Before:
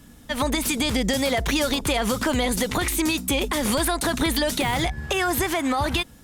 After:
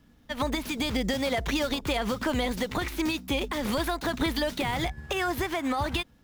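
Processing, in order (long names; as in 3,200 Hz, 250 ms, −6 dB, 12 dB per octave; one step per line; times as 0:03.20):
running median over 5 samples
expander for the loud parts 1.5 to 1, over −34 dBFS
level −3.5 dB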